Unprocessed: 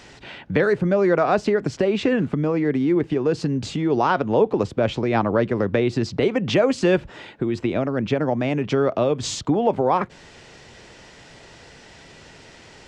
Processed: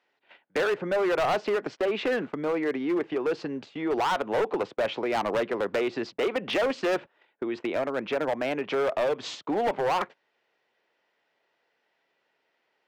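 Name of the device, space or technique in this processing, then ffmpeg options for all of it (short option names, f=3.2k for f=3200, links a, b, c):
walkie-talkie: -af "highpass=460,lowpass=3k,asoftclip=type=hard:threshold=-22dB,agate=range=-25dB:threshold=-37dB:ratio=16:detection=peak"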